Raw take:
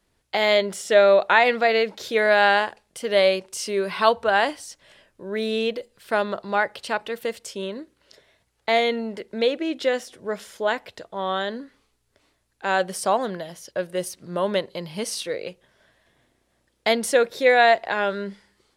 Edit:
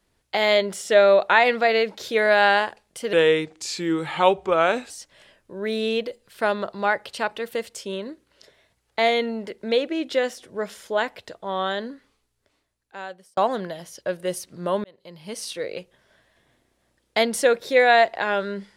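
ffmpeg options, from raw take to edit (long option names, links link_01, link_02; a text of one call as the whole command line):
ffmpeg -i in.wav -filter_complex "[0:a]asplit=5[link_01][link_02][link_03][link_04][link_05];[link_01]atrim=end=3.134[link_06];[link_02]atrim=start=3.13:end=4.6,asetpts=PTS-STARTPTS,asetrate=36603,aresample=44100[link_07];[link_03]atrim=start=4.596:end=13.07,asetpts=PTS-STARTPTS,afade=type=out:start_time=6.914:duration=1.56[link_08];[link_04]atrim=start=13.07:end=14.54,asetpts=PTS-STARTPTS,afade=type=in:duration=0.004:curve=hsin,afade=type=out:start_time=1.466:duration=0.004:curve=hsin[link_09];[link_05]atrim=start=14.54,asetpts=PTS-STARTPTS,afade=type=in:duration=0.9[link_10];[link_06][link_07]acrossfade=duration=0.004:curve1=hsin:curve2=hsin[link_11];[link_08][link_09][link_10]concat=n=3:v=0:a=1[link_12];[link_11][link_12]acrossfade=duration=0.004:curve1=hsin:curve2=hsin" out.wav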